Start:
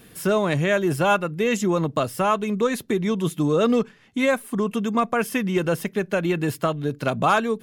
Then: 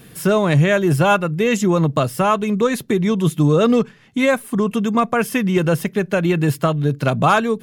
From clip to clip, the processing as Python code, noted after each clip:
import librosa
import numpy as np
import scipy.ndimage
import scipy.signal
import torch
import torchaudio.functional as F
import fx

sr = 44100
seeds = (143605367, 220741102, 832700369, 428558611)

y = fx.peak_eq(x, sr, hz=140.0, db=7.0, octaves=0.61)
y = y * librosa.db_to_amplitude(4.0)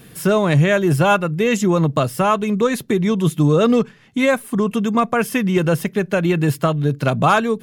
y = x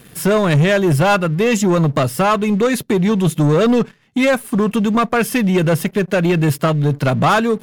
y = fx.leveller(x, sr, passes=2)
y = y * librosa.db_to_amplitude(-3.0)